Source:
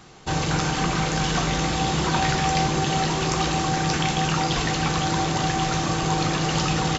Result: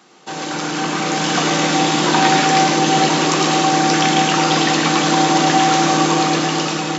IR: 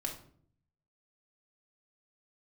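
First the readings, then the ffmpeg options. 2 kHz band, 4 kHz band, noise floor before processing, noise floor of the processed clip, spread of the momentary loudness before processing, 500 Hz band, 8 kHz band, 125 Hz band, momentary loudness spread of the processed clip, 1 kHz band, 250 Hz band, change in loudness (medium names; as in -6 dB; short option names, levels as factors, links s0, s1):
+8.0 dB, +8.0 dB, -26 dBFS, -26 dBFS, 2 LU, +8.5 dB, no reading, -0.5 dB, 7 LU, +9.0 dB, +8.0 dB, +8.0 dB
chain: -filter_complex "[0:a]highpass=f=210:w=0.5412,highpass=f=210:w=1.3066,dynaudnorm=f=240:g=9:m=3.76,asplit=2[s0][s1];[1:a]atrim=start_sample=2205,adelay=107[s2];[s1][s2]afir=irnorm=-1:irlink=0,volume=0.708[s3];[s0][s3]amix=inputs=2:normalize=0,volume=0.891"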